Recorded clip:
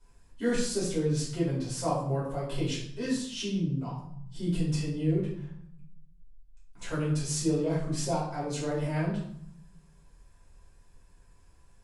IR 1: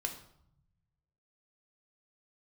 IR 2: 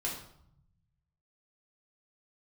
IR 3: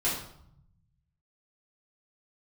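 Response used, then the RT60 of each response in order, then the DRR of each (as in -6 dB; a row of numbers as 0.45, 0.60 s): 3; 0.70, 0.70, 0.70 s; 3.5, -4.5, -9.5 dB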